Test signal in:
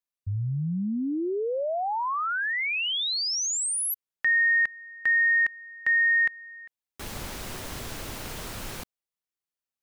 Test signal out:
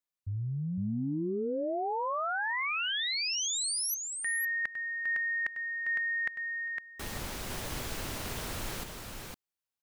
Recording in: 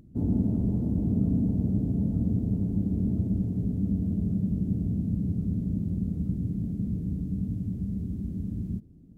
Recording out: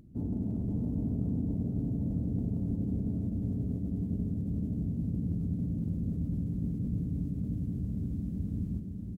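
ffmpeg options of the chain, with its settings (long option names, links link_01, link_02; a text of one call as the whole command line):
ffmpeg -i in.wav -af "areverse,acompressor=threshold=-34dB:ratio=5:attack=70:release=25:knee=1:detection=rms,areverse,aecho=1:1:508:0.596,volume=-2dB" out.wav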